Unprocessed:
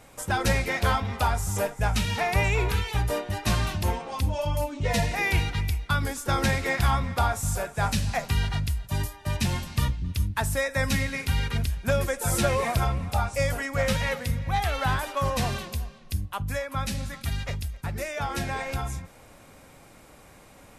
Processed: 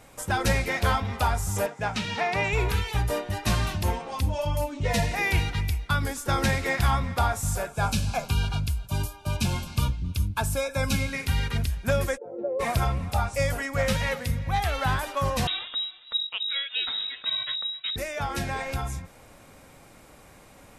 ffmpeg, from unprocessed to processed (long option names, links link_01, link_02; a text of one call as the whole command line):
ffmpeg -i in.wav -filter_complex "[0:a]asettb=1/sr,asplit=3[link_01][link_02][link_03];[link_01]atrim=end=1.664[link_04];[link_02]atrim=start=1.66:end=2.53,asetpts=PTS-STARTPTS,afade=type=in:duration=0.004:curve=qsin,afade=type=out:start_time=0.866:duration=0.004:curve=qsin,highpass=160,lowpass=5500[link_05];[link_03]atrim=start=2.526[link_06];[link_04][link_05]acrossfade=duration=0.004:curve1=hsin:curve2=qsin[link_07];[link_07][link_06]acrossfade=duration=0.004:curve1=qsin:curve2=hsin,asettb=1/sr,asplit=3[link_08][link_09][link_10];[link_08]atrim=end=7.694[link_11];[link_09]atrim=start=7.69:end=11.13,asetpts=PTS-STARTPTS,afade=type=in:duration=0.004:curve=qsin,afade=type=out:start_time=3.436:duration=0.004:curve=qsin,asuperstop=centerf=1900:order=20:qfactor=5.3[link_12];[link_10]atrim=start=11.126[link_13];[link_11][link_12]acrossfade=duration=0.004:curve1=hsin:curve2=qsin[link_14];[link_14][link_13]acrossfade=duration=0.004:curve1=qsin:curve2=hsin,asplit=3[link_15][link_16][link_17];[link_15]afade=type=out:start_time=12.16:duration=0.02[link_18];[link_16]asuperpass=centerf=440:order=4:qfactor=1.9,afade=type=in:start_time=12.16:duration=0.02,afade=type=out:start_time=12.59:duration=0.02[link_19];[link_17]afade=type=in:start_time=12.59:duration=0.02[link_20];[link_18][link_19][link_20]amix=inputs=3:normalize=0,asettb=1/sr,asplit=3[link_21][link_22][link_23];[link_21]atrim=end=15.474[link_24];[link_22]atrim=start=15.47:end=17.96,asetpts=PTS-STARTPTS,afade=type=in:duration=0.004:curve=qsin,afade=type=out:start_time=2.486:duration=0.004:curve=qsin,lowpass=frequency=3300:width_type=q:width=0.5098,lowpass=frequency=3300:width_type=q:width=0.6013,lowpass=frequency=3300:width_type=q:width=0.9,lowpass=frequency=3300:width_type=q:width=2.563,afreqshift=-3900[link_25];[link_23]atrim=start=17.956[link_26];[link_24][link_25]acrossfade=duration=0.004:curve1=hsin:curve2=qsin[link_27];[link_27][link_26]acrossfade=duration=0.004:curve1=qsin:curve2=hsin" out.wav